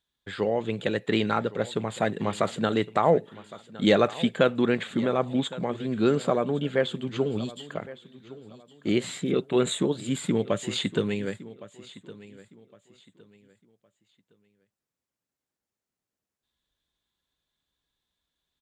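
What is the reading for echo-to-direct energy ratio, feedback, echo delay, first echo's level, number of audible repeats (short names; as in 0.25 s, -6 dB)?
-17.5 dB, 29%, 1.112 s, -18.0 dB, 2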